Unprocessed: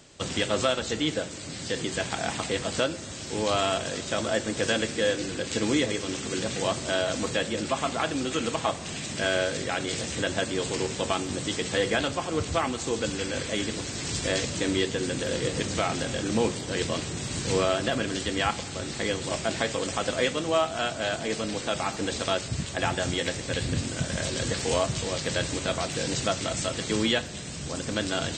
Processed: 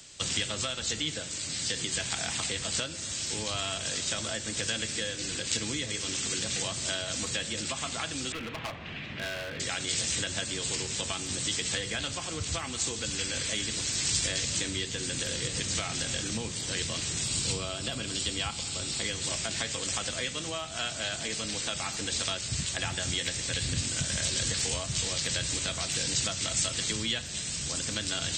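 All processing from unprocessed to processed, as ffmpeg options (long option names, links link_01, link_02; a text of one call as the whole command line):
ffmpeg -i in.wav -filter_complex "[0:a]asettb=1/sr,asplit=3[link_01][link_02][link_03];[link_01]atrim=end=8.324[link_04];[link_02]atrim=start=8.32:end=9.6,asetpts=PTS-STARTPTS,afade=type=in:duration=0.004:curve=qsin,afade=type=out:start_time=1.276:duration=0.004:curve=qsin,lowpass=frequency=2600:width=0.5412,lowpass=frequency=2600:width=1.3066,volume=26.5dB,asoftclip=hard,volume=-26.5dB[link_05];[link_03]atrim=start=9.596[link_06];[link_04][link_05]acrossfade=duration=0.004:curve1=hsin:curve2=qsin[link_07];[link_07][link_06]acrossfade=duration=0.004:curve1=qsin:curve2=hsin,asettb=1/sr,asplit=3[link_08][link_09][link_10];[link_08]atrim=end=17.244[link_11];[link_09]atrim=start=17.24:end=19.04,asetpts=PTS-STARTPTS,afade=type=in:duration=0.004:curve=qsin,afade=type=out:start_time=1.796:duration=0.004:curve=qsin,equalizer=frequency=1800:width_type=o:width=0.47:gain=-7.5,bandreject=frequency=6200:width=10[link_12];[link_10]atrim=start=19.036[link_13];[link_11][link_12]acrossfade=duration=0.004:curve1=hsin:curve2=qsin[link_14];[link_14][link_13]acrossfade=duration=0.004:curve1=qsin:curve2=hsin,lowshelf=frequency=200:gain=10,acrossover=split=190[link_15][link_16];[link_16]acompressor=threshold=-28dB:ratio=5[link_17];[link_15][link_17]amix=inputs=2:normalize=0,tiltshelf=frequency=1500:gain=-9.5,volume=-1.5dB" out.wav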